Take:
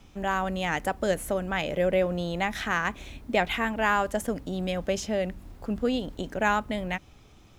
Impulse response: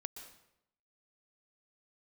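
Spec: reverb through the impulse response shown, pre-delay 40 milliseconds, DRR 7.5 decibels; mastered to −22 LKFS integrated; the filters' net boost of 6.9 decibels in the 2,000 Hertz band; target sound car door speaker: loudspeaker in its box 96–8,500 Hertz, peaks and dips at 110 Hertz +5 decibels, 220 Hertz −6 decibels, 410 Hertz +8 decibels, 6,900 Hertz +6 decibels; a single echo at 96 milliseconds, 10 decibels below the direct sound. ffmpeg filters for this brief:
-filter_complex "[0:a]equalizer=frequency=2000:width_type=o:gain=8.5,aecho=1:1:96:0.316,asplit=2[link_01][link_02];[1:a]atrim=start_sample=2205,adelay=40[link_03];[link_02][link_03]afir=irnorm=-1:irlink=0,volume=-4.5dB[link_04];[link_01][link_04]amix=inputs=2:normalize=0,highpass=96,equalizer=frequency=110:width_type=q:width=4:gain=5,equalizer=frequency=220:width_type=q:width=4:gain=-6,equalizer=frequency=410:width_type=q:width=4:gain=8,equalizer=frequency=6900:width_type=q:width=4:gain=6,lowpass=frequency=8500:width=0.5412,lowpass=frequency=8500:width=1.3066,volume=1.5dB"

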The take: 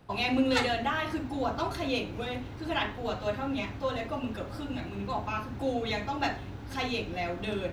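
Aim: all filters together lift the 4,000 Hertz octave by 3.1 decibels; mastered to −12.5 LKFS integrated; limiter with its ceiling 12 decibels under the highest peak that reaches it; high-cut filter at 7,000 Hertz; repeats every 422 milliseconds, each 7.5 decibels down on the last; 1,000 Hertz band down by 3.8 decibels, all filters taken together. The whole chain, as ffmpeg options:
ffmpeg -i in.wav -af "lowpass=7000,equalizer=frequency=1000:width_type=o:gain=-5.5,equalizer=frequency=4000:width_type=o:gain=4.5,alimiter=level_in=2dB:limit=-24dB:level=0:latency=1,volume=-2dB,aecho=1:1:422|844|1266|1688|2110:0.422|0.177|0.0744|0.0312|0.0131,volume=22.5dB" out.wav

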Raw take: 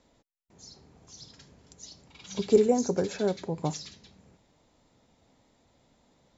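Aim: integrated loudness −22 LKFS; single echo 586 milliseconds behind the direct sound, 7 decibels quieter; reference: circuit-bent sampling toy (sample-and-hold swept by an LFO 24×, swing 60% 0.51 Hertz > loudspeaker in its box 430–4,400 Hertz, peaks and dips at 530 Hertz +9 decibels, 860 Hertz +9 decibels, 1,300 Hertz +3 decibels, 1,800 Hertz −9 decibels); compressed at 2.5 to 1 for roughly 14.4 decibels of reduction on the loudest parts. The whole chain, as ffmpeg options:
ffmpeg -i in.wav -af "acompressor=threshold=-37dB:ratio=2.5,aecho=1:1:586:0.447,acrusher=samples=24:mix=1:aa=0.000001:lfo=1:lforange=14.4:lforate=0.51,highpass=430,equalizer=frequency=530:width_type=q:width=4:gain=9,equalizer=frequency=860:width_type=q:width=4:gain=9,equalizer=frequency=1300:width_type=q:width=4:gain=3,equalizer=frequency=1800:width_type=q:width=4:gain=-9,lowpass=frequency=4400:width=0.5412,lowpass=frequency=4400:width=1.3066,volume=17.5dB" out.wav

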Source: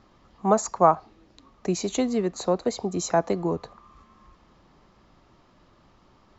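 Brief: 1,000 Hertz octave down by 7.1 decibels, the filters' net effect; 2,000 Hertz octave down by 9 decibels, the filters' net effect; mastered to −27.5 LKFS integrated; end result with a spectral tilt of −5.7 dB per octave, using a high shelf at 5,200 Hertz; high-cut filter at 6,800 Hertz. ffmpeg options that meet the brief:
ffmpeg -i in.wav -af "lowpass=6800,equalizer=frequency=1000:width_type=o:gain=-8,equalizer=frequency=2000:width_type=o:gain=-8.5,highshelf=frequency=5200:gain=-4,volume=0.5dB" out.wav

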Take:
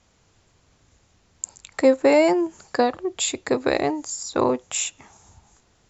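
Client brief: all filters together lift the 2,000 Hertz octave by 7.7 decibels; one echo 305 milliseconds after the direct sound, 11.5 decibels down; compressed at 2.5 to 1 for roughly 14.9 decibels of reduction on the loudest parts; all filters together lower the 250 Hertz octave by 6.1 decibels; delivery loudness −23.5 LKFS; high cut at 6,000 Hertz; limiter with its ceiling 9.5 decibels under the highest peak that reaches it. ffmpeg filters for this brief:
ffmpeg -i in.wav -af "lowpass=6000,equalizer=frequency=250:width_type=o:gain=-8.5,equalizer=frequency=2000:width_type=o:gain=9,acompressor=threshold=-36dB:ratio=2.5,alimiter=level_in=0.5dB:limit=-24dB:level=0:latency=1,volume=-0.5dB,aecho=1:1:305:0.266,volume=13.5dB" out.wav

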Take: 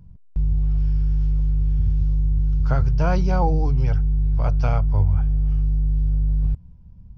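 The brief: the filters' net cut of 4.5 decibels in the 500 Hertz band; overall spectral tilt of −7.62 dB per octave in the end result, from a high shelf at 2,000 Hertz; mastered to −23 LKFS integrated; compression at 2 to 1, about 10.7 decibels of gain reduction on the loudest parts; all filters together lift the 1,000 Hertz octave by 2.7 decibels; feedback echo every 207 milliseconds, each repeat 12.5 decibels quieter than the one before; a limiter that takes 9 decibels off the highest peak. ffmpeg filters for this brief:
ffmpeg -i in.wav -af "equalizer=frequency=500:width_type=o:gain=-8,equalizer=frequency=1000:width_type=o:gain=5.5,highshelf=frequency=2000:gain=6,acompressor=threshold=-35dB:ratio=2,alimiter=level_in=3.5dB:limit=-24dB:level=0:latency=1,volume=-3.5dB,aecho=1:1:207|414|621:0.237|0.0569|0.0137,volume=13.5dB" out.wav

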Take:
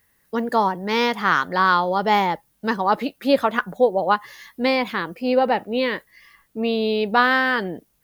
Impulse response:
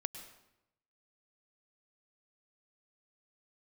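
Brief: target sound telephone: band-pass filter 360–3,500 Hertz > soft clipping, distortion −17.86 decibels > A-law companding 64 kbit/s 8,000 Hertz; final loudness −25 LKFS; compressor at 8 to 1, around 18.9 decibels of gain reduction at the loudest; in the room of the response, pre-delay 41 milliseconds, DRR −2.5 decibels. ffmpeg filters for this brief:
-filter_complex "[0:a]acompressor=threshold=-32dB:ratio=8,asplit=2[link_01][link_02];[1:a]atrim=start_sample=2205,adelay=41[link_03];[link_02][link_03]afir=irnorm=-1:irlink=0,volume=3dB[link_04];[link_01][link_04]amix=inputs=2:normalize=0,highpass=360,lowpass=3500,asoftclip=threshold=-24dB,volume=9.5dB" -ar 8000 -c:a pcm_alaw

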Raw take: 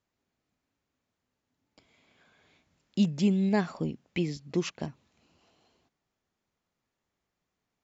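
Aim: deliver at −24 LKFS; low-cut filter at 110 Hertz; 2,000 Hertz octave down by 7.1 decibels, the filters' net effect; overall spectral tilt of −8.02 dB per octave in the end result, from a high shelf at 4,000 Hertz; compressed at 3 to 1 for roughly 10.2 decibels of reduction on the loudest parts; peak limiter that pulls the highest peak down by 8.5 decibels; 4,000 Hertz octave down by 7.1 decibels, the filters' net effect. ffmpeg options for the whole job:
ffmpeg -i in.wav -af "highpass=110,equalizer=frequency=2000:width_type=o:gain=-7,highshelf=frequency=4000:gain=-4,equalizer=frequency=4000:width_type=o:gain=-4.5,acompressor=threshold=-34dB:ratio=3,volume=17dB,alimiter=limit=-13.5dB:level=0:latency=1" out.wav

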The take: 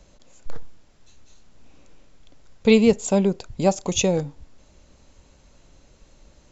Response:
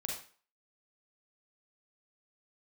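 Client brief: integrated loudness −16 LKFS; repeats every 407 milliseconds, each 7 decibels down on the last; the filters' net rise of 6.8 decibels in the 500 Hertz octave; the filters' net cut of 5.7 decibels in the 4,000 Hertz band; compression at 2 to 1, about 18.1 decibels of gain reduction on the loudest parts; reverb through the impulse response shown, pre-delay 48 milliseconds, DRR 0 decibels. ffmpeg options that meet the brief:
-filter_complex "[0:a]equalizer=frequency=500:width_type=o:gain=8,equalizer=frequency=4000:width_type=o:gain=-7.5,acompressor=threshold=-40dB:ratio=2,aecho=1:1:407|814|1221|1628|2035:0.447|0.201|0.0905|0.0407|0.0183,asplit=2[link_01][link_02];[1:a]atrim=start_sample=2205,adelay=48[link_03];[link_02][link_03]afir=irnorm=-1:irlink=0,volume=-1dB[link_04];[link_01][link_04]amix=inputs=2:normalize=0,volume=13dB"

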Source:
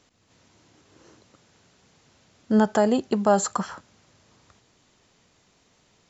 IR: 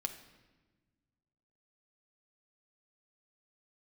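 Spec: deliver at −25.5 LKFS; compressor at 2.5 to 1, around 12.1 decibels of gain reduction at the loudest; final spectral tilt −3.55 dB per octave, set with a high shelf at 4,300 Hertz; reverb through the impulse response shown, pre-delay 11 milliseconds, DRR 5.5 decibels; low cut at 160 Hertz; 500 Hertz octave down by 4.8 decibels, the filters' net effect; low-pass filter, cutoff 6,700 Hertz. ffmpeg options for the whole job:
-filter_complex "[0:a]highpass=160,lowpass=6700,equalizer=frequency=500:width_type=o:gain=-6.5,highshelf=frequency=4300:gain=9,acompressor=threshold=-35dB:ratio=2.5,asplit=2[link_01][link_02];[1:a]atrim=start_sample=2205,adelay=11[link_03];[link_02][link_03]afir=irnorm=-1:irlink=0,volume=-5.5dB[link_04];[link_01][link_04]amix=inputs=2:normalize=0,volume=10dB"

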